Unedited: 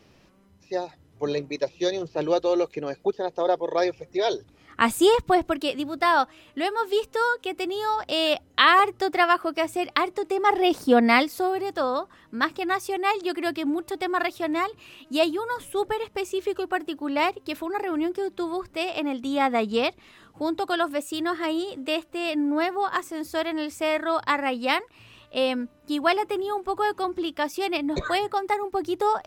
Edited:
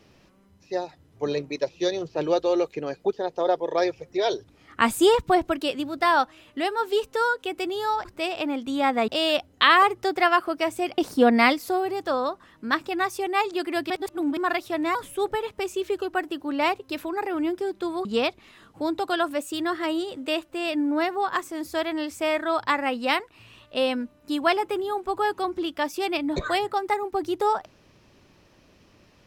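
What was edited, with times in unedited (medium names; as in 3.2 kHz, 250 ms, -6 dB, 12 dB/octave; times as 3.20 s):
9.95–10.68 s: delete
13.60–14.07 s: reverse
14.65–15.52 s: delete
18.62–19.65 s: move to 8.05 s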